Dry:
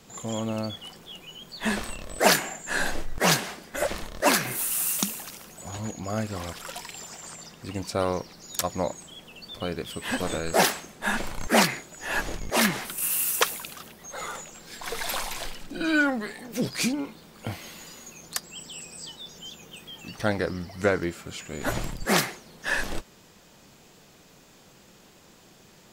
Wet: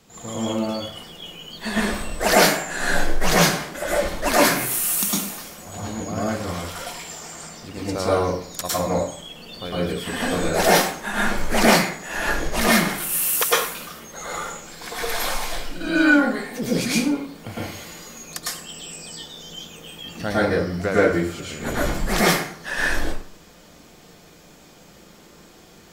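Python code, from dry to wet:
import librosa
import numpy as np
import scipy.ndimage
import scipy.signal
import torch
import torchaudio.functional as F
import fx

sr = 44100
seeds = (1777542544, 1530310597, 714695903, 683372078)

y = fx.rev_plate(x, sr, seeds[0], rt60_s=0.55, hf_ratio=0.7, predelay_ms=95, drr_db=-7.5)
y = y * librosa.db_to_amplitude(-2.5)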